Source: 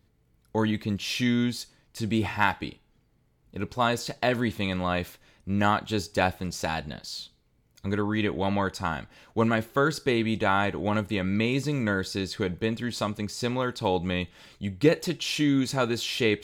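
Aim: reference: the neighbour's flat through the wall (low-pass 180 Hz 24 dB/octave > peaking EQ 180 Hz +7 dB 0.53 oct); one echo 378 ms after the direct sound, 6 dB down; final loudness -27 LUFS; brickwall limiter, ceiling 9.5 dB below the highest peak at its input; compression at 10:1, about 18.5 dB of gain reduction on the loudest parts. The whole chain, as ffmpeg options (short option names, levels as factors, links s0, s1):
-af "acompressor=threshold=0.02:ratio=10,alimiter=level_in=2:limit=0.0631:level=0:latency=1,volume=0.501,lowpass=f=180:w=0.5412,lowpass=f=180:w=1.3066,equalizer=f=180:t=o:w=0.53:g=7,aecho=1:1:378:0.501,volume=7.94"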